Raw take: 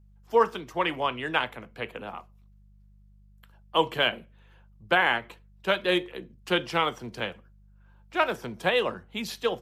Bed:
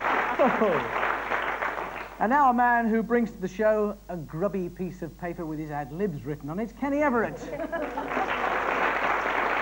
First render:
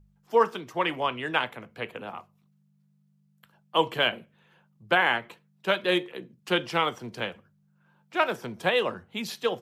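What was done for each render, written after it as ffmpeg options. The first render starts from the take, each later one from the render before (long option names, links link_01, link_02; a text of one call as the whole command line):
ffmpeg -i in.wav -af "bandreject=frequency=50:width_type=h:width=4,bandreject=frequency=100:width_type=h:width=4" out.wav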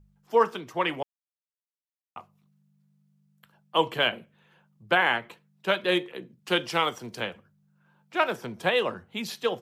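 ffmpeg -i in.wav -filter_complex "[0:a]asettb=1/sr,asplit=3[link_01][link_02][link_03];[link_01]atrim=end=6.504[link_04];[link_02]atrim=start=6.5:end=7.22,asetpts=PTS-STARTPTS,afade=type=in:duration=0.004:curve=qsin,afade=type=out:start_time=0.716:duration=0.004:curve=qsin,bass=frequency=250:gain=-2,treble=frequency=4000:gain=6[link_05];[link_03]atrim=start=7.216[link_06];[link_04][link_05]acrossfade=duration=0.004:curve1=hsin:curve2=qsin[link_07];[link_07][link_06]acrossfade=duration=0.004:curve1=qsin:curve2=hsin,asplit=3[link_08][link_09][link_10];[link_08]atrim=end=1.03,asetpts=PTS-STARTPTS,afade=type=out:start_time=1.026:duration=0.004:curve=hsin[link_11];[link_09]atrim=start=1.03:end=2.16,asetpts=PTS-STARTPTS,volume=0[link_12];[link_10]atrim=start=2.16,asetpts=PTS-STARTPTS,afade=type=in:duration=0.004:curve=hsin[link_13];[link_11][link_12][link_13]concat=n=3:v=0:a=1" out.wav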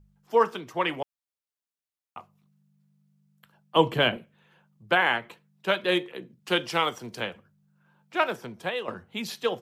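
ffmpeg -i in.wav -filter_complex "[0:a]asettb=1/sr,asplit=3[link_01][link_02][link_03];[link_01]atrim=end=3.764[link_04];[link_02]atrim=start=3.76:end=4.17,asetpts=PTS-STARTPTS,afade=type=in:duration=0.004:curve=qsin,afade=type=out:start_time=0.406:duration=0.004:curve=qsin,lowshelf=frequency=350:gain=11.5[link_05];[link_03]atrim=start=4.166[link_06];[link_04][link_05]acrossfade=duration=0.004:curve1=hsin:curve2=qsin[link_07];[link_07][link_06]acrossfade=duration=0.004:curve1=qsin:curve2=hsin,asplit=2[link_08][link_09];[link_08]atrim=end=8.88,asetpts=PTS-STARTPTS,afade=type=out:start_time=8.19:duration=0.69:silence=0.316228[link_10];[link_09]atrim=start=8.88,asetpts=PTS-STARTPTS,afade=type=in:duration=0.004:curve=hsin:silence=0.316228[link_11];[link_10][link_11]concat=n=2:v=0:a=1" out.wav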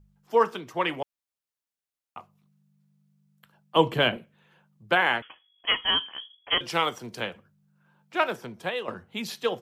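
ffmpeg -i in.wav -filter_complex "[0:a]asettb=1/sr,asplit=3[link_01][link_02][link_03];[link_01]atrim=end=5.224[link_04];[link_02]atrim=start=5.22:end=6.61,asetpts=PTS-STARTPTS,afade=type=in:duration=0.004:curve=qsin,afade=type=out:start_time=1.386:duration=0.004:curve=qsin,lowpass=frequency=3000:width_type=q:width=0.5098,lowpass=frequency=3000:width_type=q:width=0.6013,lowpass=frequency=3000:width_type=q:width=0.9,lowpass=frequency=3000:width_type=q:width=2.563,afreqshift=-3500[link_05];[link_03]atrim=start=6.606[link_06];[link_04][link_05]acrossfade=duration=0.004:curve1=hsin:curve2=qsin[link_07];[link_07][link_06]acrossfade=duration=0.004:curve1=qsin:curve2=hsin" out.wav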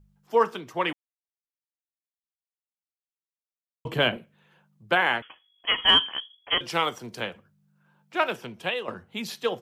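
ffmpeg -i in.wav -filter_complex "[0:a]asettb=1/sr,asplit=3[link_01][link_02][link_03];[link_01]atrim=end=5.784[link_04];[link_02]atrim=start=5.78:end=6.2,asetpts=PTS-STARTPTS,afade=type=in:duration=0.004:curve=qsin,afade=type=out:start_time=0.416:duration=0.004:curve=qsin,acontrast=66[link_05];[link_03]atrim=start=6.196[link_06];[link_04][link_05]acrossfade=duration=0.004:curve1=hsin:curve2=qsin[link_07];[link_07][link_06]acrossfade=duration=0.004:curve1=qsin:curve2=hsin,asettb=1/sr,asplit=3[link_08][link_09][link_10];[link_08]atrim=end=8.284[link_11];[link_09]atrim=start=8.28:end=8.74,asetpts=PTS-STARTPTS,afade=type=in:duration=0.004:curve=qsin,afade=type=out:start_time=0.456:duration=0.004:curve=qsin,equalizer=frequency=2800:width_type=o:width=0.45:gain=10.5[link_12];[link_10]atrim=start=8.736[link_13];[link_11][link_12]acrossfade=duration=0.004:curve1=hsin:curve2=qsin[link_14];[link_14][link_13]acrossfade=duration=0.004:curve1=qsin:curve2=hsin,asplit=3[link_15][link_16][link_17];[link_15]atrim=end=0.93,asetpts=PTS-STARTPTS,afade=type=out:start_time=0.926:duration=0.004:curve=hsin[link_18];[link_16]atrim=start=0.93:end=3.85,asetpts=PTS-STARTPTS,volume=0[link_19];[link_17]atrim=start=3.85,asetpts=PTS-STARTPTS,afade=type=in:duration=0.004:curve=hsin[link_20];[link_18][link_19][link_20]concat=n=3:v=0:a=1" out.wav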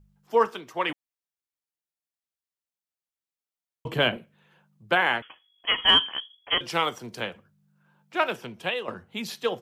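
ffmpeg -i in.wav -filter_complex "[0:a]asettb=1/sr,asplit=3[link_01][link_02][link_03];[link_01]atrim=end=0.464[link_04];[link_02]atrim=start=0.46:end=0.9,asetpts=PTS-STARTPTS,afade=type=in:duration=0.004:curve=qsin,afade=type=out:start_time=0.436:duration=0.004:curve=qsin,lowshelf=frequency=190:gain=-11[link_05];[link_03]atrim=start=0.896[link_06];[link_04][link_05]acrossfade=duration=0.004:curve1=hsin:curve2=qsin[link_07];[link_07][link_06]acrossfade=duration=0.004:curve1=qsin:curve2=hsin" out.wav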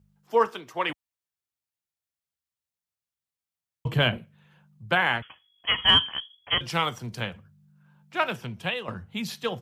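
ffmpeg -i in.wav -af "highpass=72,asubboost=boost=7:cutoff=130" out.wav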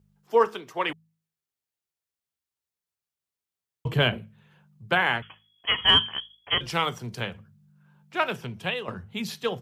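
ffmpeg -i in.wav -af "equalizer=frequency=410:width_type=o:width=0.22:gain=6.5,bandreject=frequency=53.59:width_type=h:width=4,bandreject=frequency=107.18:width_type=h:width=4,bandreject=frequency=160.77:width_type=h:width=4,bandreject=frequency=214.36:width_type=h:width=4" out.wav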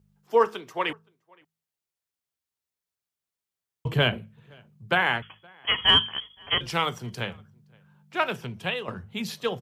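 ffmpeg -i in.wav -filter_complex "[0:a]asplit=2[link_01][link_02];[link_02]adelay=519,volume=-28dB,highshelf=frequency=4000:gain=-11.7[link_03];[link_01][link_03]amix=inputs=2:normalize=0" out.wav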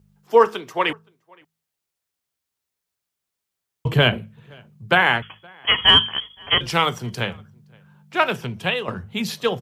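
ffmpeg -i in.wav -af "volume=6.5dB,alimiter=limit=-3dB:level=0:latency=1" out.wav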